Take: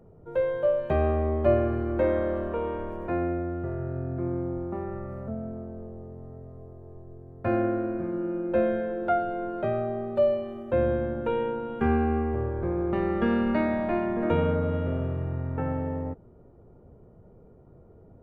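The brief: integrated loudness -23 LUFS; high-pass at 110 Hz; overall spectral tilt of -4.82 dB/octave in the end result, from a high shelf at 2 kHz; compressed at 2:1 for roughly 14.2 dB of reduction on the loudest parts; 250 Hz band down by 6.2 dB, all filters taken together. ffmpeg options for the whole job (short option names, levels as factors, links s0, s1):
-af "highpass=110,equalizer=f=250:t=o:g=-8.5,highshelf=f=2000:g=-4,acompressor=threshold=0.00447:ratio=2,volume=9.44"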